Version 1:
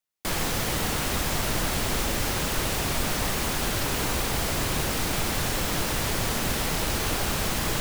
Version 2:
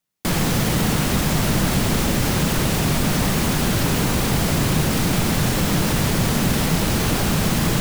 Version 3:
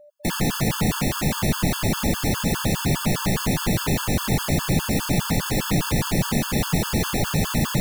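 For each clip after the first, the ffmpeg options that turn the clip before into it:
ffmpeg -i in.wav -filter_complex "[0:a]equalizer=frequency=170:width=0.87:gain=11,asplit=2[link_01][link_02];[link_02]alimiter=limit=-19dB:level=0:latency=1,volume=-0.5dB[link_03];[link_01][link_03]amix=inputs=2:normalize=0" out.wav
ffmpeg -i in.wav -af "aeval=exprs='val(0)+0.00501*sin(2*PI*590*n/s)':channel_layout=same,afftfilt=real='re*gt(sin(2*PI*4.9*pts/sr)*(1-2*mod(floor(b*sr/1024/880),2)),0)':imag='im*gt(sin(2*PI*4.9*pts/sr)*(1-2*mod(floor(b*sr/1024/880),2)),0)':win_size=1024:overlap=0.75" out.wav

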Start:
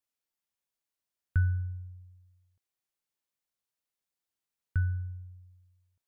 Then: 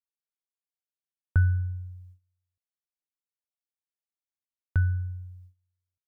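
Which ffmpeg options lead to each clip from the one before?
ffmpeg -i in.wav -af "agate=range=-20dB:threshold=-55dB:ratio=16:detection=peak,volume=4.5dB" out.wav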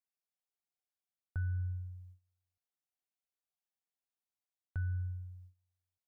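ffmpeg -i in.wav -af "equalizer=frequency=740:width=5.7:gain=9.5,areverse,acompressor=threshold=-29dB:ratio=6,areverse,volume=-4.5dB" out.wav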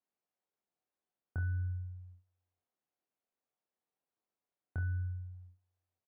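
ffmpeg -i in.wav -af "bandpass=frequency=400:width_type=q:width=0.58:csg=0,aecho=1:1:25|49|70:0.668|0.158|0.188,volume=8dB" out.wav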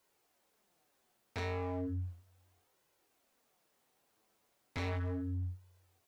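ffmpeg -i in.wav -af "asoftclip=type=hard:threshold=-39.5dB,flanger=delay=2:depth=7.2:regen=-28:speed=0.35:shape=sinusoidal,aeval=exprs='0.0106*sin(PI/2*3.98*val(0)/0.0106)':channel_layout=same,volume=5.5dB" out.wav

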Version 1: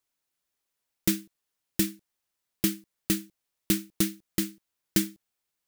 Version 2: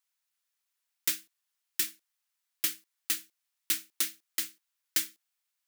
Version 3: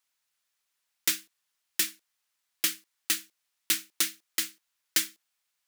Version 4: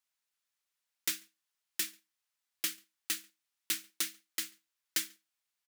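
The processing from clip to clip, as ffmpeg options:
ffmpeg -i in.wav -af "highpass=1100" out.wav
ffmpeg -i in.wav -af "highshelf=frequency=11000:gain=-6,volume=5.5dB" out.wav
ffmpeg -i in.wav -filter_complex "[0:a]asplit=2[link_01][link_02];[link_02]adelay=139.9,volume=-29dB,highshelf=frequency=4000:gain=-3.15[link_03];[link_01][link_03]amix=inputs=2:normalize=0,volume=-7dB" out.wav

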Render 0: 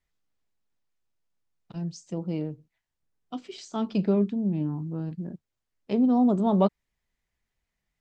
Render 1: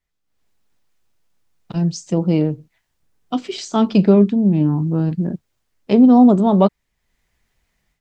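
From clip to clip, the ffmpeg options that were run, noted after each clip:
ffmpeg -i in.wav -af "dynaudnorm=framelen=240:gausssize=3:maxgain=14dB" out.wav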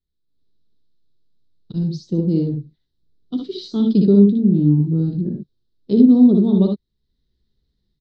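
ffmpeg -i in.wav -filter_complex "[0:a]firequalizer=gain_entry='entry(400,0);entry(660,-20);entry(1500,-18);entry(2400,-25);entry(3900,2);entry(7000,-25)':delay=0.05:min_phase=1,asplit=2[link_01][link_02];[link_02]aecho=0:1:60|74:0.562|0.447[link_03];[link_01][link_03]amix=inputs=2:normalize=0,volume=-1.5dB" out.wav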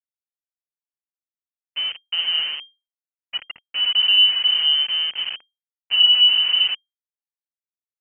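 ffmpeg -i in.wav -af "aeval=exprs='val(0)*gte(abs(val(0)),0.0794)':channel_layout=same,agate=range=-33dB:threshold=-32dB:ratio=3:detection=peak,lowpass=frequency=2700:width_type=q:width=0.5098,lowpass=frequency=2700:width_type=q:width=0.6013,lowpass=frequency=2700:width_type=q:width=0.9,lowpass=frequency=2700:width_type=q:width=2.563,afreqshift=-3200,volume=-4dB" out.wav

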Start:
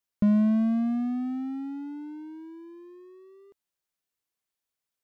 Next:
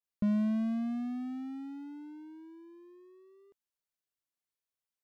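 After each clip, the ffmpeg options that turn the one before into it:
ffmpeg -i in.wav -af "adynamicequalizer=threshold=0.00282:dfrequency=1700:dqfactor=0.7:tfrequency=1700:tqfactor=0.7:attack=5:release=100:ratio=0.375:range=3:mode=boostabove:tftype=highshelf,volume=-7.5dB" out.wav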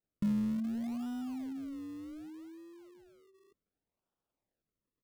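ffmpeg -i in.wav -filter_complex "[0:a]aecho=1:1:6.6:0.31,acrossover=split=410[link_01][link_02];[link_02]acrusher=samples=39:mix=1:aa=0.000001:lfo=1:lforange=39:lforate=0.66[link_03];[link_01][link_03]amix=inputs=2:normalize=0" out.wav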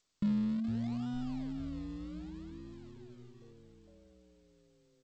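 ffmpeg -i in.wav -filter_complex "[0:a]aexciter=amount=1.3:drive=4:freq=3500,asplit=9[link_01][link_02][link_03][link_04][link_05][link_06][link_07][link_08][link_09];[link_02]adelay=456,afreqshift=-96,volume=-11dB[link_10];[link_03]adelay=912,afreqshift=-192,volume=-14.7dB[link_11];[link_04]adelay=1368,afreqshift=-288,volume=-18.5dB[link_12];[link_05]adelay=1824,afreqshift=-384,volume=-22.2dB[link_13];[link_06]adelay=2280,afreqshift=-480,volume=-26dB[link_14];[link_07]adelay=2736,afreqshift=-576,volume=-29.7dB[link_15];[link_08]adelay=3192,afreqshift=-672,volume=-33.5dB[link_16];[link_09]adelay=3648,afreqshift=-768,volume=-37.2dB[link_17];[link_01][link_10][link_11][link_12][link_13][link_14][link_15][link_16][link_17]amix=inputs=9:normalize=0" -ar 16000 -c:a g722 out.g722

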